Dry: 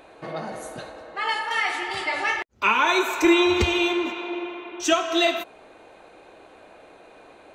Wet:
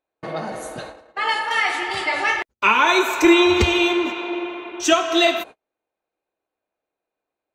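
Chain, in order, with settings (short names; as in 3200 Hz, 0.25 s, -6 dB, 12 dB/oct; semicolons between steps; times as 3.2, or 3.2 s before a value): gate -39 dBFS, range -40 dB; gain +4 dB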